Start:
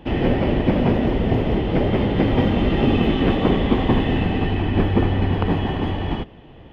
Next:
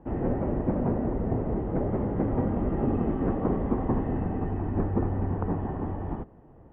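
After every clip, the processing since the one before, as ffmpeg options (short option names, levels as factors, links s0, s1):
-af "lowpass=f=1400:w=0.5412,lowpass=f=1400:w=1.3066,volume=0.376"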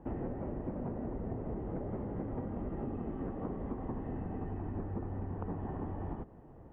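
-af "acompressor=threshold=0.0224:ratio=12,volume=0.841"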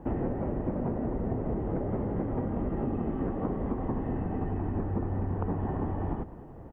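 -filter_complex "[0:a]asplit=2[s0][s1];[s1]adelay=209.9,volume=0.158,highshelf=f=4000:g=-4.72[s2];[s0][s2]amix=inputs=2:normalize=0,volume=2.37"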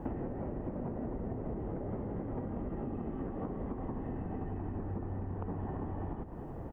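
-af "acompressor=threshold=0.0126:ratio=10,volume=1.5"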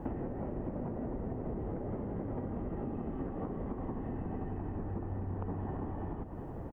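-af "aecho=1:1:366:0.251"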